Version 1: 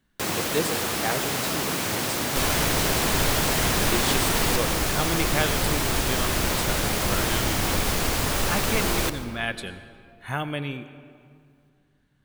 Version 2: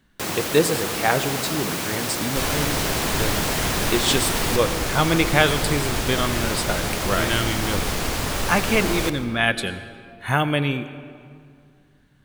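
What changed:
speech +8.5 dB; second sound: add treble shelf 11 kHz -5 dB

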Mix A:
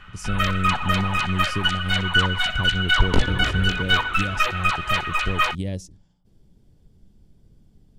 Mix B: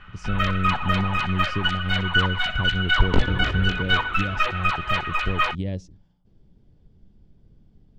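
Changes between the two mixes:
background: remove low-pass 6.9 kHz 12 dB/octave; master: add distance through air 160 m

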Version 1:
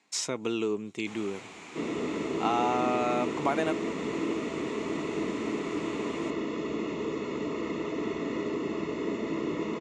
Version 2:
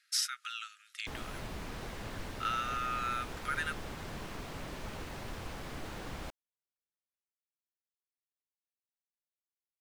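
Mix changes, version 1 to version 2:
speech: add brick-wall FIR band-pass 1.2–12 kHz; second sound: muted; master: remove cabinet simulation 290–8100 Hz, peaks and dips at 560 Hz -9 dB, 1.6 kHz -6 dB, 2.3 kHz +7 dB, 4.9 kHz -5 dB, 7.1 kHz +8 dB

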